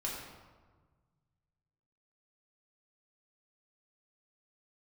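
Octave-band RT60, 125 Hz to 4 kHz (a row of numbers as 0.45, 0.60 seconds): 2.6, 1.8, 1.5, 1.4, 1.1, 0.80 seconds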